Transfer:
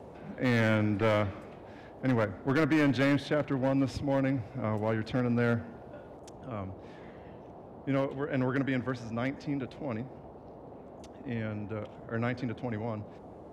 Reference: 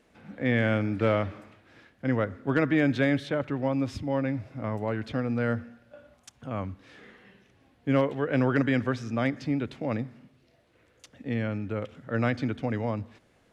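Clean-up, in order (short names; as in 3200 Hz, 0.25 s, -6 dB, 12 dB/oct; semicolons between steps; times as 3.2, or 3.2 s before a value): clip repair -21 dBFS; noise print and reduce 14 dB; gain 0 dB, from 6.17 s +5.5 dB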